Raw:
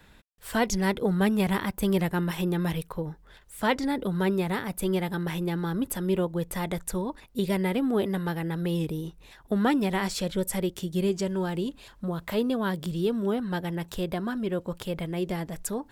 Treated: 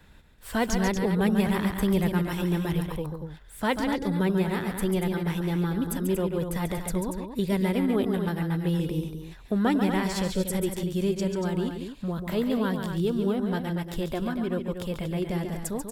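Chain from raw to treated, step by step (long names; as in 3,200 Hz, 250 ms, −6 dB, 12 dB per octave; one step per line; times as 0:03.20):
low-shelf EQ 170 Hz +6 dB
on a send: loudspeakers that aren't time-aligned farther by 48 metres −7 dB, 81 metres −8 dB
on the sum: level −2 dB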